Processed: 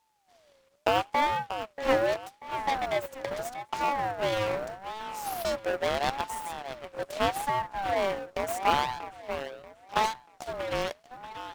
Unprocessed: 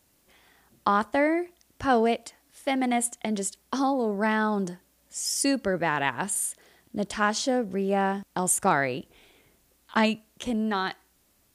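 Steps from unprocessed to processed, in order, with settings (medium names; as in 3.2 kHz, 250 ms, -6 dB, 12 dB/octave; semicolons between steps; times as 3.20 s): three-band isolator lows -23 dB, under 310 Hz, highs -17 dB, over 7.2 kHz; feedback echo behind a low-pass 636 ms, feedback 35%, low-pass 2.1 kHz, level -9.5 dB; full-wave rectifier; in parallel at -10.5 dB: sample-rate reducer 1.4 kHz; on the sum: ring modulator with a swept carrier 710 Hz, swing 25%, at 0.79 Hz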